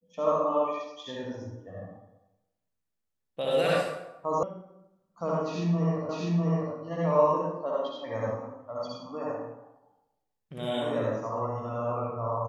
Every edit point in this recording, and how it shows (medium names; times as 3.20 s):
4.43 s: sound stops dead
6.09 s: repeat of the last 0.65 s